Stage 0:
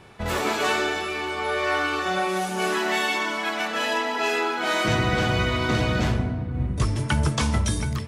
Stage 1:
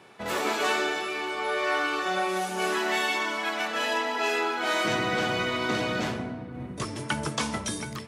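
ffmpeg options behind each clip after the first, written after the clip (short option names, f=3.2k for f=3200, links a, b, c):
-af "highpass=220,volume=-2.5dB"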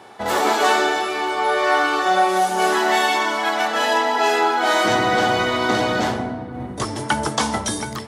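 -af "equalizer=f=160:t=o:w=0.33:g=-10,equalizer=f=800:t=o:w=0.33:g=8,equalizer=f=2.5k:t=o:w=0.33:g=-7,volume=8dB"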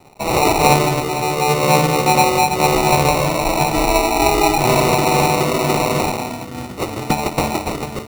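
-filter_complex "[0:a]acrossover=split=390|1700|2100[a][b][c][d];[a]alimiter=level_in=1dB:limit=-24dB:level=0:latency=1:release=421,volume=-1dB[e];[e][b][c][d]amix=inputs=4:normalize=0,acrusher=samples=27:mix=1:aa=0.000001,aeval=exprs='sgn(val(0))*max(abs(val(0))-0.00501,0)':c=same,volume=4dB"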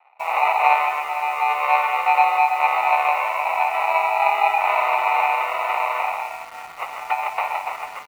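-filter_complex "[0:a]asuperpass=centerf=1400:order=8:qfactor=0.71,aecho=1:1:127:0.316,asplit=2[a][b];[b]acrusher=bits=5:mix=0:aa=0.000001,volume=-4dB[c];[a][c]amix=inputs=2:normalize=0,volume=-4.5dB"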